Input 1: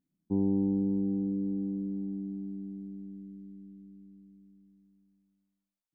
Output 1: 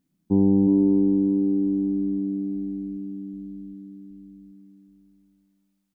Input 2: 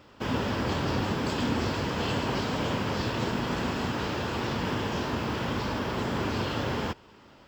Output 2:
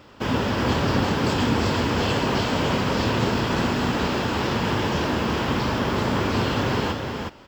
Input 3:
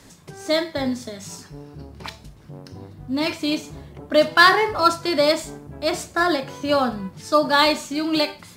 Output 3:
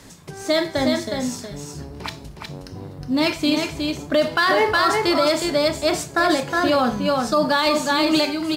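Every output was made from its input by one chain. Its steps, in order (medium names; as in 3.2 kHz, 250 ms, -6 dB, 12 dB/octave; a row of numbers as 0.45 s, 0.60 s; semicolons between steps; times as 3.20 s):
on a send: delay 364 ms -5 dB; on the sum: loudness maximiser +11.5 dB; peak normalisation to -9 dBFS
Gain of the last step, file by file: -2.5 dB, -6.0 dB, -8.0 dB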